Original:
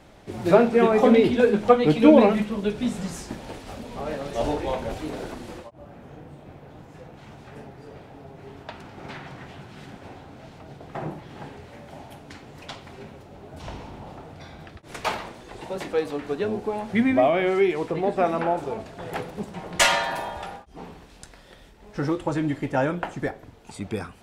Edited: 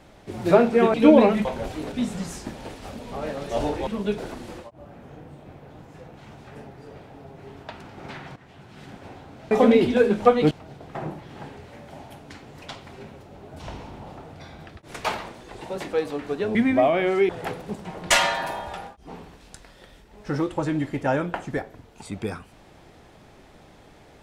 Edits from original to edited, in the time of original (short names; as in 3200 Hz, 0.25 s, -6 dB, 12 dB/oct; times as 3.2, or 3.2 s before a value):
0.94–1.94 move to 10.51
2.45–2.76 swap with 4.71–5.18
9.36–9.92 fade in, from -13 dB
16.55–16.95 cut
17.69–18.98 cut